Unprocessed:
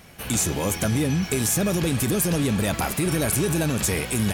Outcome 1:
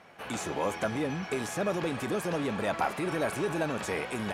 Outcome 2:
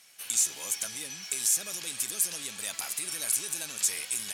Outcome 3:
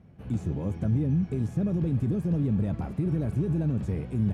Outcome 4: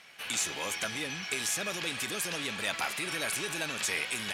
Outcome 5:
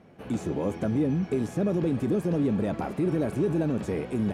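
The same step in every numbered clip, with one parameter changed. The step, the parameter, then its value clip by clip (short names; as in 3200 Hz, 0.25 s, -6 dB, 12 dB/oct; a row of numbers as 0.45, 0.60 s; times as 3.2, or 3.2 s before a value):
band-pass, frequency: 910, 7400, 120, 2700, 330 Hz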